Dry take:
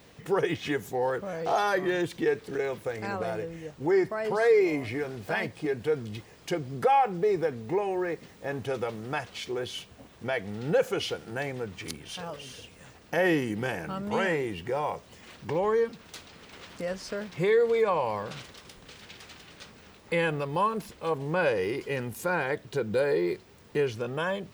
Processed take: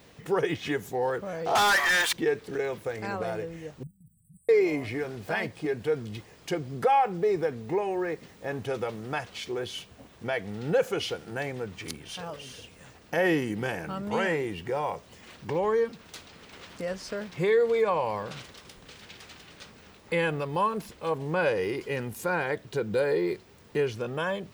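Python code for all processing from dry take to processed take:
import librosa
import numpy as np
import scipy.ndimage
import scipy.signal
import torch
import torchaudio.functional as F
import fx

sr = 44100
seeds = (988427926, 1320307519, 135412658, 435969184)

y = fx.chain(x, sr, fx.highpass(hz=860.0, slope=24),
    fx.leveller(passes=5), at=(1.55, 2.13))
y = fx.chain(y, sr, fx.brickwall_bandstop(low_hz=180.0, high_hz=7700.0),
    fx.level_steps(step_db=13), at=(3.83, 4.49))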